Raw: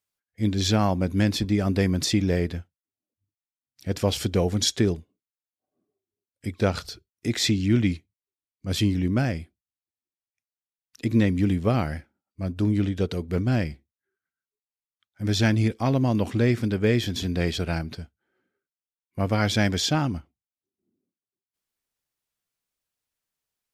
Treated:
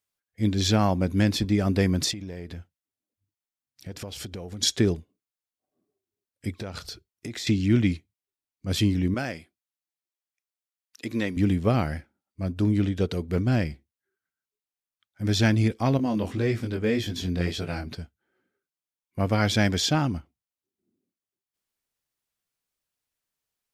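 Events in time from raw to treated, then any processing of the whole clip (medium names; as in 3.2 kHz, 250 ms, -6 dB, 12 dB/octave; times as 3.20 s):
2.11–4.63 s: compression 8:1, threshold -33 dBFS
6.57–7.47 s: compression 8:1, threshold -31 dBFS
9.14–11.37 s: high-pass 510 Hz 6 dB/octave
15.97–17.87 s: chorus 1.8 Hz, delay 18.5 ms, depth 4.8 ms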